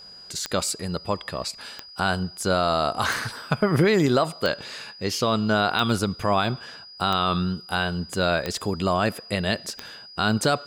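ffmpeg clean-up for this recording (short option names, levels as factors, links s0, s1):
-af "adeclick=t=4,bandreject=f=4900:w=30"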